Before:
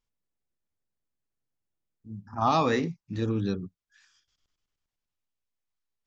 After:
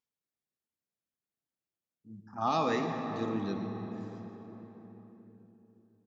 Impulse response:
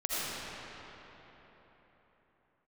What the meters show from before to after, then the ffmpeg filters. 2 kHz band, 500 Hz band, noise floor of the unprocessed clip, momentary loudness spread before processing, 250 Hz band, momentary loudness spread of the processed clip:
-4.5 dB, -4.0 dB, under -85 dBFS, 20 LU, -3.5 dB, 23 LU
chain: -filter_complex "[0:a]highpass=160,bandreject=f=1000:w=27,asplit=2[s0][s1];[s1]adelay=641,lowpass=f=990:p=1,volume=0.188,asplit=2[s2][s3];[s3]adelay=641,lowpass=f=990:p=1,volume=0.4,asplit=2[s4][s5];[s5]adelay=641,lowpass=f=990:p=1,volume=0.4,asplit=2[s6][s7];[s7]adelay=641,lowpass=f=990:p=1,volume=0.4[s8];[s0][s2][s4][s6][s8]amix=inputs=5:normalize=0,asplit=2[s9][s10];[1:a]atrim=start_sample=2205,lowshelf=f=110:g=11[s11];[s10][s11]afir=irnorm=-1:irlink=0,volume=0.266[s12];[s9][s12]amix=inputs=2:normalize=0,volume=0.422"

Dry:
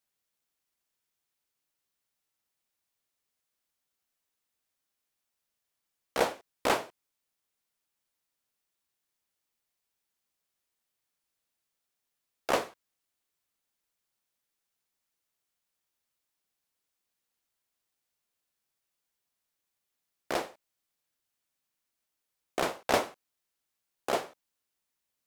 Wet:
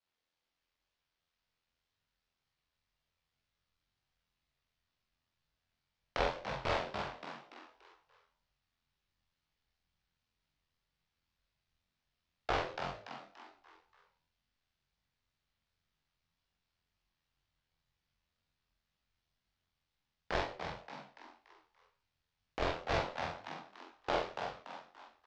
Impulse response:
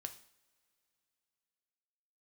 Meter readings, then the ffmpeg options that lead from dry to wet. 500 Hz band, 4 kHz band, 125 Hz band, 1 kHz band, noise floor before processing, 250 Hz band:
-5.0 dB, -4.0 dB, +5.5 dB, -3.5 dB, -85 dBFS, -6.0 dB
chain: -filter_complex "[0:a]lowpass=f=4900:w=0.5412,lowpass=f=4900:w=1.3066,bandreject=f=60.55:t=h:w=4,bandreject=f=121.1:t=h:w=4,bandreject=f=181.65:t=h:w=4,bandreject=f=242.2:t=h:w=4,bandreject=f=302.75:t=h:w=4,bandreject=f=363.3:t=h:w=4,bandreject=f=423.85:t=h:w=4,bandreject=f=484.4:t=h:w=4,bandreject=f=544.95:t=h:w=4,asubboost=boost=10.5:cutoff=71,acompressor=threshold=0.0316:ratio=6,asplit=6[s0][s1][s2][s3][s4][s5];[s1]adelay=288,afreqshift=90,volume=0.447[s6];[s2]adelay=576,afreqshift=180,volume=0.193[s7];[s3]adelay=864,afreqshift=270,volume=0.0822[s8];[s4]adelay=1152,afreqshift=360,volume=0.0355[s9];[s5]adelay=1440,afreqshift=450,volume=0.0153[s10];[s0][s6][s7][s8][s9][s10]amix=inputs=6:normalize=0,aeval=exprs='val(0)*sin(2*PI*42*n/s)':c=same,asplit=2[s11][s12];[s12]adelay=44,volume=0.75[s13];[s11][s13]amix=inputs=2:normalize=0,flanger=delay=19.5:depth=5.2:speed=2,volume=1.88"

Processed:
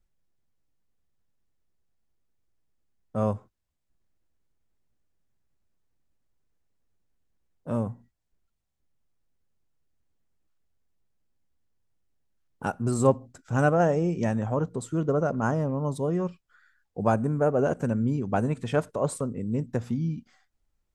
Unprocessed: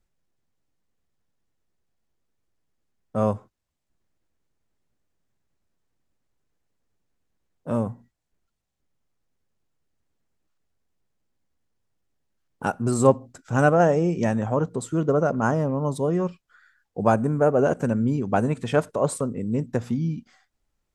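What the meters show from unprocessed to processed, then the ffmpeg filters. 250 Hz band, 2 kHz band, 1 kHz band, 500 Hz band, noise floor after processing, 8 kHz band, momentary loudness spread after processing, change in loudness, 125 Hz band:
-3.5 dB, -4.5 dB, -4.5 dB, -4.0 dB, -78 dBFS, -4.5 dB, 9 LU, -3.5 dB, -2.0 dB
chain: -af "lowshelf=f=99:g=7,volume=0.596"

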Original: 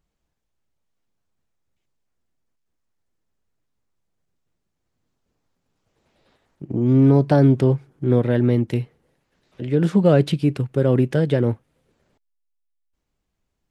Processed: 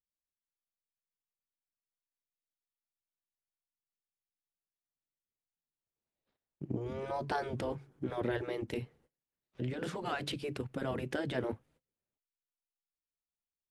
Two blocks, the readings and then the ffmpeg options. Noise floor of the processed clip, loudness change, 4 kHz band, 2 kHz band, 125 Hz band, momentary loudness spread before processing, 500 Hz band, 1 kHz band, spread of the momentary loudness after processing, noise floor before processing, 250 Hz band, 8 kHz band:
under -85 dBFS, -19.0 dB, -7.0 dB, -7.0 dB, -23.5 dB, 11 LU, -17.0 dB, -8.0 dB, 6 LU, -77 dBFS, -21.0 dB, no reading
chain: -af "afftfilt=real='re*lt(hypot(re,im),0.562)':imag='im*lt(hypot(re,im),0.562)':win_size=1024:overlap=0.75,agate=range=0.0631:threshold=0.00126:ratio=16:detection=peak,volume=0.447"

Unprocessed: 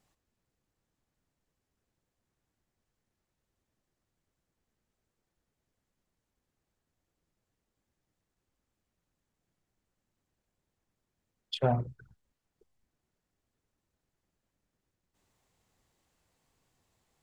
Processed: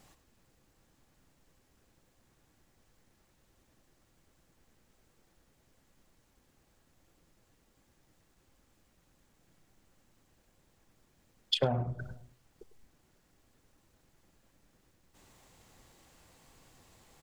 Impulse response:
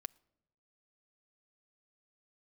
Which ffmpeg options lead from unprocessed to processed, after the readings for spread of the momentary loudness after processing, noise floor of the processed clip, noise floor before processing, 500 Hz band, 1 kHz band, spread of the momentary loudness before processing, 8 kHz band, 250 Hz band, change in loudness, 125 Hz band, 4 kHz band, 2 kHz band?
15 LU, -71 dBFS, under -85 dBFS, -1.0 dB, -3.5 dB, 12 LU, no reading, -2.0 dB, -2.0 dB, -1.5 dB, +7.5 dB, +2.5 dB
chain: -filter_complex "[0:a]aecho=1:1:100:0.178,asplit=2[s0][s1];[1:a]atrim=start_sample=2205[s2];[s1][s2]afir=irnorm=-1:irlink=0,volume=4.73[s3];[s0][s3]amix=inputs=2:normalize=0,acompressor=threshold=0.0398:ratio=16,volume=1.33"

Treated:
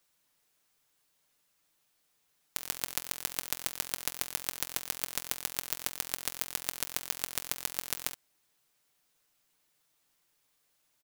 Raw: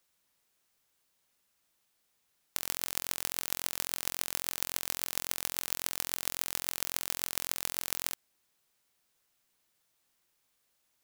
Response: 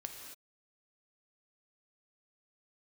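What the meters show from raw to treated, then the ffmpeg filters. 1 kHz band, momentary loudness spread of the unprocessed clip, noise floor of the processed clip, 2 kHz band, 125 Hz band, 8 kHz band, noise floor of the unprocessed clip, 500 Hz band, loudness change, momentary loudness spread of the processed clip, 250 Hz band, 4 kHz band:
-1.0 dB, 1 LU, -75 dBFS, -1.0 dB, -0.5 dB, -1.0 dB, -76 dBFS, -1.0 dB, -1.0 dB, 2 LU, -1.0 dB, -1.0 dB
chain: -af "aeval=exprs='0.794*(cos(1*acos(clip(val(0)/0.794,-1,1)))-cos(1*PI/2))+0.141*(cos(8*acos(clip(val(0)/0.794,-1,1)))-cos(8*PI/2))':c=same,aecho=1:1:6.7:0.4,volume=1.12"

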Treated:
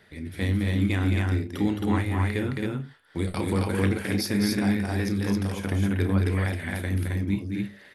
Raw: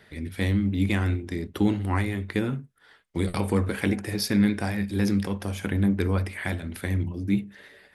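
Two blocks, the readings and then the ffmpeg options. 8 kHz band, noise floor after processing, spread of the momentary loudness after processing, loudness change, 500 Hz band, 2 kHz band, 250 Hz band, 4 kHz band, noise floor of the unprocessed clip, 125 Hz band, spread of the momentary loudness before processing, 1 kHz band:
+0.5 dB, -51 dBFS, 7 LU, +0.5 dB, +0.5 dB, +0.5 dB, -0.5 dB, +0.5 dB, -58 dBFS, +1.5 dB, 7 LU, +0.5 dB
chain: -af "aecho=1:1:32.07|215.7|268.2:0.282|0.562|0.794,volume=0.75"

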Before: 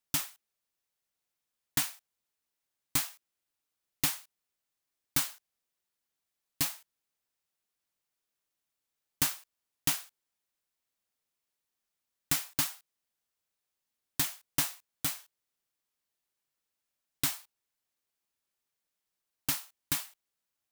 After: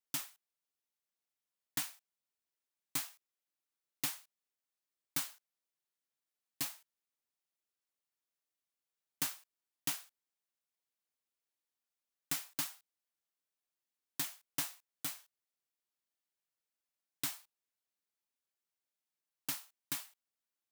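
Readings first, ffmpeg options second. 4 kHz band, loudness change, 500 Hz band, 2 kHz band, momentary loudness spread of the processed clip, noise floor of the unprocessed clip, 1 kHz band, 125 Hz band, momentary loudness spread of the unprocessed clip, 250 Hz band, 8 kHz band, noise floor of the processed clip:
-7.5 dB, -7.5 dB, -7.5 dB, -7.5 dB, 10 LU, under -85 dBFS, -7.5 dB, -12.0 dB, 11 LU, -8.5 dB, -7.5 dB, under -85 dBFS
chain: -af "highpass=160,volume=0.422"

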